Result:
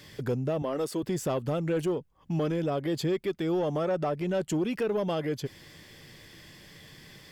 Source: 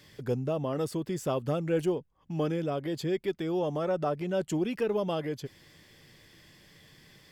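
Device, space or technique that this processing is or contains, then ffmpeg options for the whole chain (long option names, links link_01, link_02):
soft clipper into limiter: -filter_complex "[0:a]asettb=1/sr,asplit=3[link_01][link_02][link_03];[link_01]atrim=end=0.624[link_04];[link_02]atrim=start=0.62:end=1.03,asetpts=PTS-STARTPTS,afade=type=in:duration=0.004:curve=qsin,afade=type=out:start_time=0.406:duration=0.004:curve=qsin,highpass=250[link_05];[link_03]atrim=start=1.026[link_06];[link_04][link_05]acrossfade=duration=0.004:curve1=hsin:curve2=qsin[link_07];[link_07][link_06]acrossfade=duration=0.004:curve1=qsin:curve2=hsin,asoftclip=type=tanh:threshold=-22.5dB,alimiter=level_in=4dB:limit=-24dB:level=0:latency=1:release=408,volume=-4dB,volume=6dB"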